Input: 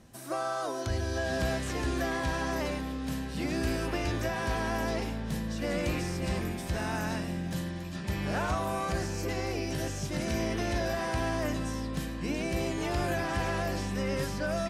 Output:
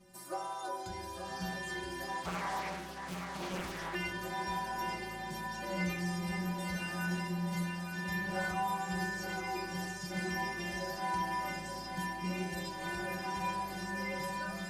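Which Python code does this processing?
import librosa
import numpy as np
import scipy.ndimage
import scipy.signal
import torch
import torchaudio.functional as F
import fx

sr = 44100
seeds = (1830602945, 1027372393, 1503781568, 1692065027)

y = fx.rider(x, sr, range_db=10, speed_s=2.0)
y = fx.stiff_resonator(y, sr, f0_hz=180.0, decay_s=0.54, stiffness=0.008)
y = fx.echo_thinned(y, sr, ms=878, feedback_pct=74, hz=190.0, wet_db=-7.0)
y = fx.doppler_dist(y, sr, depth_ms=0.78, at=(2.25, 3.95))
y = y * 10.0 ** (9.0 / 20.0)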